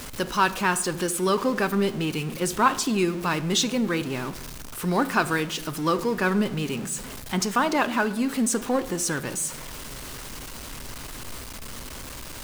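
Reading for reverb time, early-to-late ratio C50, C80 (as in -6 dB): 0.95 s, 15.5 dB, 18.0 dB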